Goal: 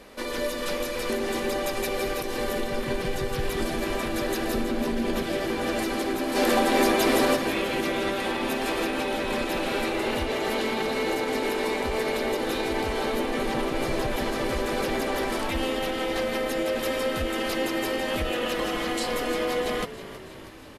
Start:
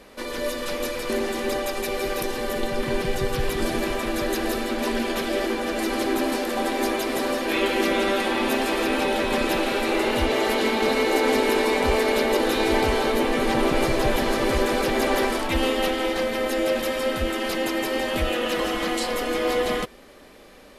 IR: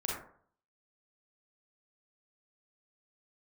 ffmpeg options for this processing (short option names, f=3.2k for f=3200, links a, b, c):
-filter_complex "[0:a]asettb=1/sr,asplit=3[a][b][c];[a]atrim=end=4.544[d];[b]atrim=start=4.54:end=5.23,asetpts=PTS-STARTPTS,afade=t=in:d=0.004:c=qsin,afade=t=out:st=0.686:d=0.004:c=qsin,lowshelf=f=390:g=10.5[e];[c]atrim=start=5.226[f];[d][e]acrossfade=d=0.004:c1=hsin:c2=qsin[g];[g][f]acrossfade=d=0.004:c1=qsin:c2=hsin,alimiter=limit=-18dB:level=0:latency=1:release=183,asplit=3[h][i][j];[h]afade=t=out:st=6.35:d=0.02[k];[i]acontrast=65,afade=t=in:st=6.35:d=0.02,afade=t=out:st=7.35:d=0.02[l];[j]afade=t=in:st=7.35:d=0.02[m];[k][l][m]amix=inputs=3:normalize=0,asplit=8[n][o][p][q][r][s][t][u];[o]adelay=321,afreqshift=-56,volume=-14.5dB[v];[p]adelay=642,afreqshift=-112,volume=-18.7dB[w];[q]adelay=963,afreqshift=-168,volume=-22.8dB[x];[r]adelay=1284,afreqshift=-224,volume=-27dB[y];[s]adelay=1605,afreqshift=-280,volume=-31.1dB[z];[t]adelay=1926,afreqshift=-336,volume=-35.3dB[aa];[u]adelay=2247,afreqshift=-392,volume=-39.4dB[ab];[n][v][w][x][y][z][aa][ab]amix=inputs=8:normalize=0"